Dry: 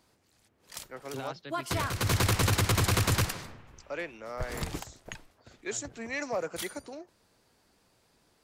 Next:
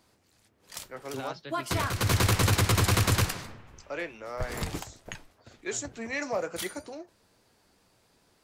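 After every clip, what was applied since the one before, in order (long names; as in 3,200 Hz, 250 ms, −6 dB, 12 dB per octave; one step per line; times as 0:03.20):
flanger 2 Hz, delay 8.9 ms, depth 2.5 ms, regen −63%
level +6 dB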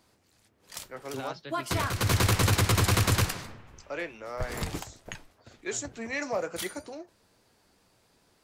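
no processing that can be heard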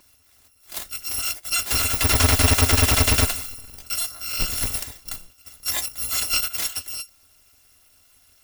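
samples in bit-reversed order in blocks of 256 samples
slew-rate limiting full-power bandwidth 380 Hz
level +9 dB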